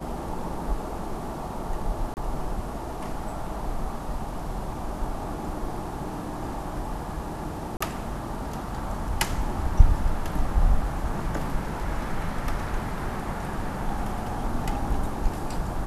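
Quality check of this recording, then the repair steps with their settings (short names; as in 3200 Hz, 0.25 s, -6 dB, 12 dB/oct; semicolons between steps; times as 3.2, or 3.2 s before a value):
2.14–2.17 gap 29 ms
7.77–7.8 gap 35 ms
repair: interpolate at 2.14, 29 ms; interpolate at 7.77, 35 ms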